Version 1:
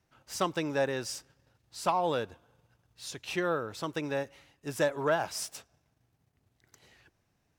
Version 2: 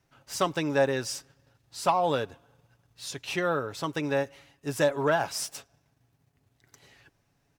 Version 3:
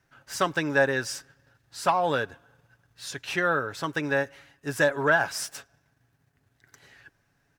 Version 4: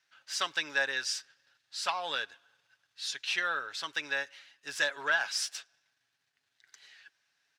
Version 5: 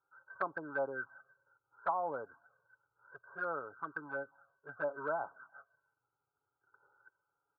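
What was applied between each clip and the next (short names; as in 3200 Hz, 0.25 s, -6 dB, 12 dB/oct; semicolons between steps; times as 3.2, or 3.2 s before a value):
comb 7.2 ms, depth 35%; gain +3 dB
bell 1600 Hz +10 dB 0.49 oct
band-pass 3900 Hz, Q 1.3; gain +4.5 dB
brick-wall FIR low-pass 1600 Hz; envelope flanger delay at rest 2.3 ms, full sweep at -33 dBFS; gain +4 dB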